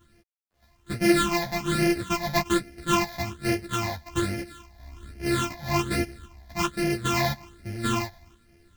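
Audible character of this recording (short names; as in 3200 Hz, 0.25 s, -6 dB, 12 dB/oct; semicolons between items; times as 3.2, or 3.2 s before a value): a buzz of ramps at a fixed pitch in blocks of 128 samples; phasing stages 8, 1.2 Hz, lowest notch 370–1100 Hz; a quantiser's noise floor 12-bit, dither none; a shimmering, thickened sound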